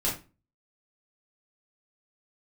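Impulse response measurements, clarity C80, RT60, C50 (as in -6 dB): 13.5 dB, 0.30 s, 7.0 dB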